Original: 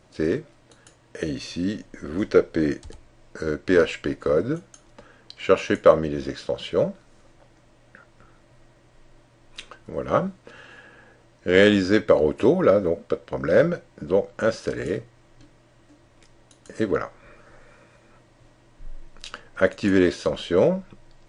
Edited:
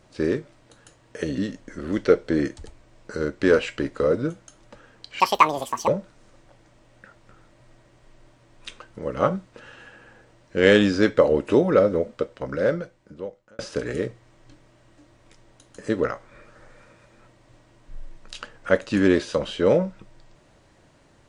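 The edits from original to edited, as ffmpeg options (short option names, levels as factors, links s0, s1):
-filter_complex "[0:a]asplit=5[s0][s1][s2][s3][s4];[s0]atrim=end=1.382[s5];[s1]atrim=start=1.638:end=5.464[s6];[s2]atrim=start=5.46:end=6.79,asetpts=PTS-STARTPTS,asetrate=86436,aresample=44100[s7];[s3]atrim=start=6.786:end=14.5,asetpts=PTS-STARTPTS,afade=t=out:st=6.164:d=1.55[s8];[s4]atrim=start=14.5,asetpts=PTS-STARTPTS,afade=t=in:d=0.004:c=hsin[s9];[s5][s6]acrossfade=d=0.004:c1=hsin:c2=hsin[s10];[s10][s7]acrossfade=d=0.004:c1=hsin:c2=hsin[s11];[s8][s9]concat=n=2:v=0:a=1[s12];[s11][s12]acrossfade=d=0.004:c1=hsin:c2=hsin"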